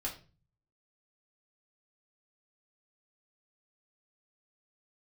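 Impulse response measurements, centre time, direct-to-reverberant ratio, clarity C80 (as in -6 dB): 18 ms, -3.0 dB, 15.5 dB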